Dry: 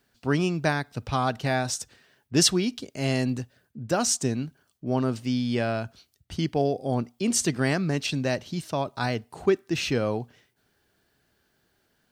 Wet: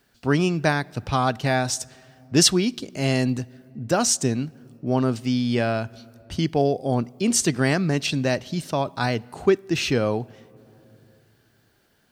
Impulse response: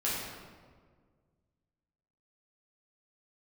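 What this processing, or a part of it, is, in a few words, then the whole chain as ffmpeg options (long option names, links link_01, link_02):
ducked reverb: -filter_complex "[0:a]asplit=3[link_01][link_02][link_03];[1:a]atrim=start_sample=2205[link_04];[link_02][link_04]afir=irnorm=-1:irlink=0[link_05];[link_03]apad=whole_len=534184[link_06];[link_05][link_06]sidechaincompress=threshold=-39dB:ratio=12:attack=22:release=689,volume=-14.5dB[link_07];[link_01][link_07]amix=inputs=2:normalize=0,volume=3.5dB"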